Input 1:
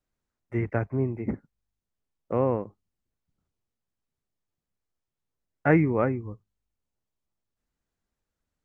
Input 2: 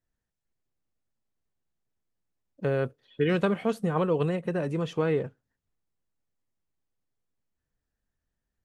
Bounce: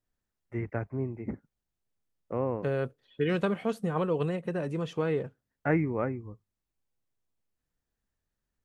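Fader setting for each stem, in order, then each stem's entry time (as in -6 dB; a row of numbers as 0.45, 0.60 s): -6.0, -3.0 dB; 0.00, 0.00 s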